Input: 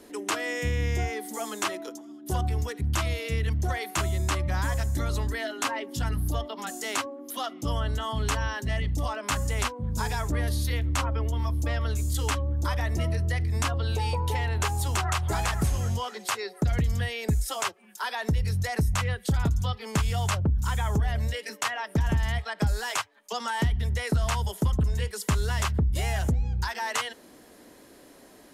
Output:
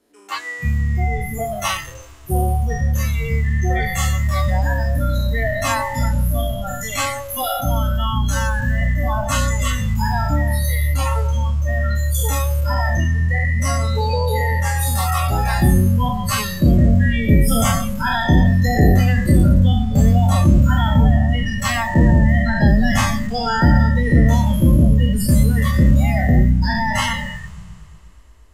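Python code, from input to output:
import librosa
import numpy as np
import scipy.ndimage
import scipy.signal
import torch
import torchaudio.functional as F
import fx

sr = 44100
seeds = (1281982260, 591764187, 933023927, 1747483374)

y = fx.spec_trails(x, sr, decay_s=2.53)
y = fx.echo_heads(y, sr, ms=120, heads='first and third', feedback_pct=74, wet_db=-18.0)
y = fx.noise_reduce_blind(y, sr, reduce_db=24)
y = y * 10.0 ** (8.0 / 20.0)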